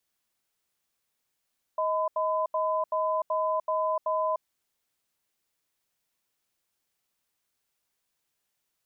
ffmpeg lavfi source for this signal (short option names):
-f lavfi -i "aevalsrc='0.0447*(sin(2*PI*630*t)+sin(2*PI*1010*t))*clip(min(mod(t,0.38),0.3-mod(t,0.38))/0.005,0,1)':d=2.64:s=44100"